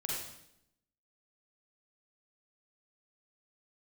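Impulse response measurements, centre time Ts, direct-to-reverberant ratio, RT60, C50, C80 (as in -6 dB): 68 ms, -4.5 dB, 0.80 s, -1.5 dB, 2.5 dB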